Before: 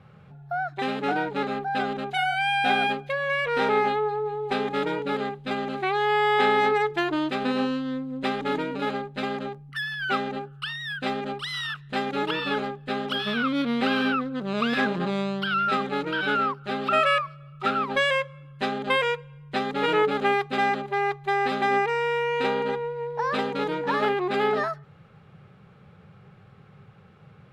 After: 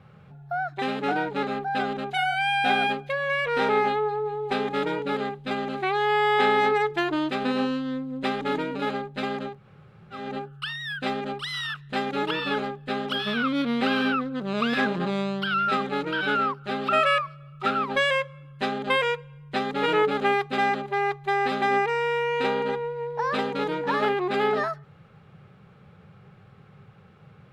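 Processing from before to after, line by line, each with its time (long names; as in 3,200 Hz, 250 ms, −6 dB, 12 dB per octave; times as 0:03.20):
0:09.56–0:10.22: fill with room tone, crossfade 0.24 s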